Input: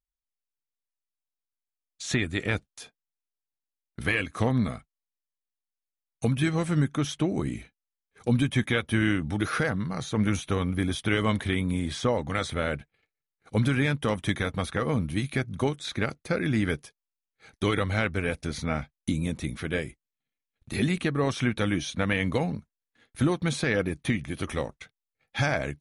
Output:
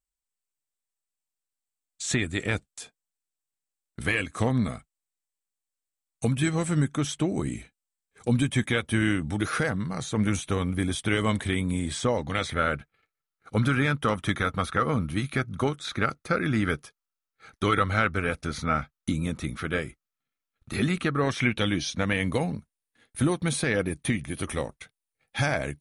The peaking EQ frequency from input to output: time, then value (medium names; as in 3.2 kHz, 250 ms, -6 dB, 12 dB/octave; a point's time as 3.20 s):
peaking EQ +11.5 dB 0.34 oct
12.07 s 8 kHz
12.63 s 1.3 kHz
21.16 s 1.3 kHz
22.21 s 9.4 kHz